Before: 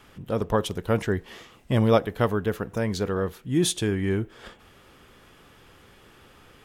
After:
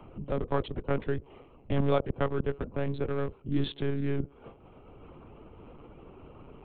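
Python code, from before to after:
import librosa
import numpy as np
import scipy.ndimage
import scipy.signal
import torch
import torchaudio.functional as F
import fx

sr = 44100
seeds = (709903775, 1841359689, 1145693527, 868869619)

y = fx.wiener(x, sr, points=25)
y = fx.lpc_monotone(y, sr, seeds[0], pitch_hz=140.0, order=16)
y = fx.band_squash(y, sr, depth_pct=40)
y = F.gain(torch.from_numpy(y), -4.0).numpy()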